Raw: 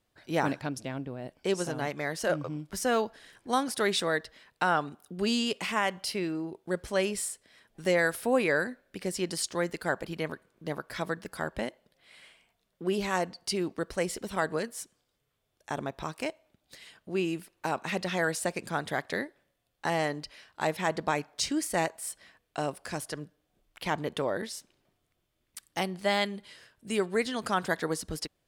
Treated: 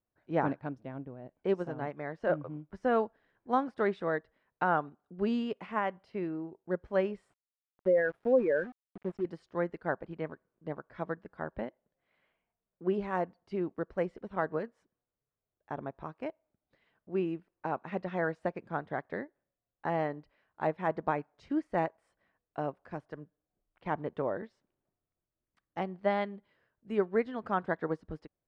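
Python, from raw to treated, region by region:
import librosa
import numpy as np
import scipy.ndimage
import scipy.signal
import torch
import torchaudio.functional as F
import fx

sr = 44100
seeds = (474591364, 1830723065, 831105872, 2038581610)

y = fx.chain(x, sr, fx.spec_expand(power=2.1),
    fx.sample_gate(floor_db=-37.5), at=(7.3, 9.25))
y = scipy.signal.sosfilt(scipy.signal.butter(2, 1400.0, 'lowpass', fs=sr, output='sos'), y)
y = fx.upward_expand(y, sr, threshold_db=-50.0, expansion=1.5)
y = y * 10.0 ** (1.5 / 20.0)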